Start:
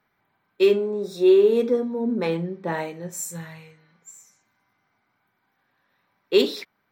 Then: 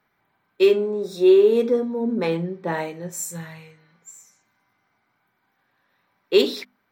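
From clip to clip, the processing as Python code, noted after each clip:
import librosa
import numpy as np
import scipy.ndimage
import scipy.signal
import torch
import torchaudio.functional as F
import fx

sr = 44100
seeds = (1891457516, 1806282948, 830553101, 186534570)

y = fx.hum_notches(x, sr, base_hz=50, count=5)
y = F.gain(torch.from_numpy(y), 1.5).numpy()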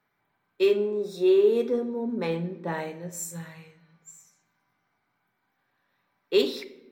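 y = fx.room_shoebox(x, sr, seeds[0], volume_m3=380.0, walls='mixed', distance_m=0.31)
y = F.gain(torch.from_numpy(y), -5.5).numpy()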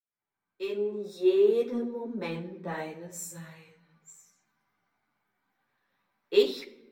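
y = fx.fade_in_head(x, sr, length_s=1.42)
y = fx.ensemble(y, sr)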